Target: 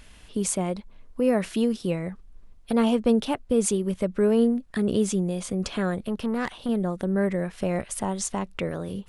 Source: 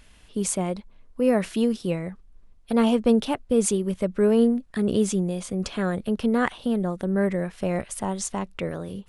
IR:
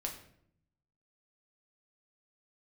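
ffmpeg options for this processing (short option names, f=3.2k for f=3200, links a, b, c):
-filter_complex "[0:a]asplit=2[a][b];[b]acompressor=threshold=-33dB:ratio=6,volume=1dB[c];[a][c]amix=inputs=2:normalize=0,asettb=1/sr,asplit=3[d][e][f];[d]atrim=end=5.944[g];[e]atrim=start=5.94:end=6.69,asetpts=PTS-STARTPTS,afade=t=in:d=0.004:c=qsin,afade=t=out:st=0.746:d=0.004:c=qsin,aeval=exprs='(tanh(8.91*val(0)+0.3)-tanh(0.3))/8.91':c=same[h];[f]atrim=start=6.686[i];[g][h]acrossfade=d=0.004:c1=hsin:c2=qsin[j];[j][i]acrossfade=d=0.004:c1=qsin:c2=hsin,volume=-3dB"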